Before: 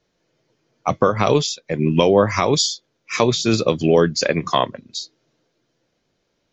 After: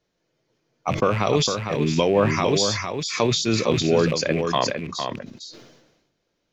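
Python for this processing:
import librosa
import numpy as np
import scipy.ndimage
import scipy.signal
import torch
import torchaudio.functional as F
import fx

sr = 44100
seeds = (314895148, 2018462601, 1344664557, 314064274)

y = fx.rattle_buzz(x, sr, strikes_db=-28.0, level_db=-23.0)
y = y + 10.0 ** (-6.5 / 20.0) * np.pad(y, (int(455 * sr / 1000.0), 0))[:len(y)]
y = fx.sustainer(y, sr, db_per_s=52.0)
y = y * 10.0 ** (-5.0 / 20.0)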